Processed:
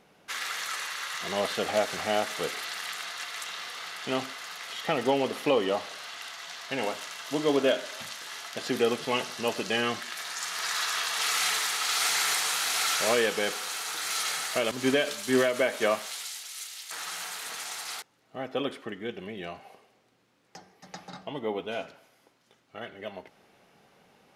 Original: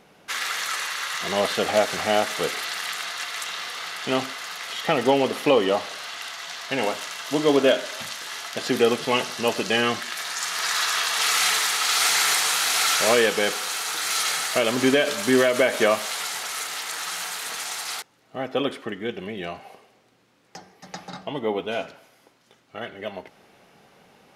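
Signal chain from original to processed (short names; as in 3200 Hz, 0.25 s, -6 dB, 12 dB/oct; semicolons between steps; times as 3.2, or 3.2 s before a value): 14.71–16.91 three-band expander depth 100%; gain -6 dB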